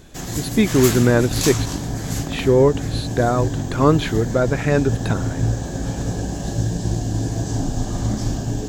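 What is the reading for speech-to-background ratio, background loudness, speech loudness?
5.0 dB, -24.5 LUFS, -19.5 LUFS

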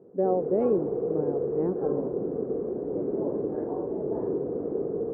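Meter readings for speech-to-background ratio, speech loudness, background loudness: 1.0 dB, -29.5 LUFS, -30.5 LUFS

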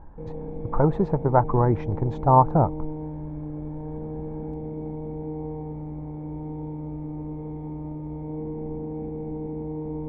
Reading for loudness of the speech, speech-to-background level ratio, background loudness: -22.0 LUFS, 12.5 dB, -34.5 LUFS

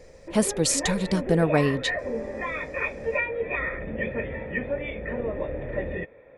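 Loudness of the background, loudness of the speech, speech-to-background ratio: -30.5 LUFS, -24.5 LUFS, 6.0 dB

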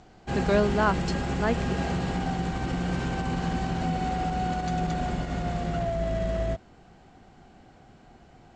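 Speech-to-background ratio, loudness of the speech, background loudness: 1.5 dB, -28.0 LUFS, -29.5 LUFS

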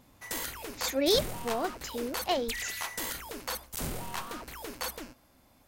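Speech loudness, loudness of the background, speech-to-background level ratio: -31.5 LUFS, -37.0 LUFS, 5.5 dB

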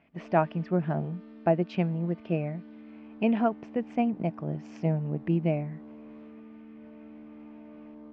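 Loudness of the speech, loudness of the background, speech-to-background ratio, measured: -29.5 LUFS, -48.0 LUFS, 18.5 dB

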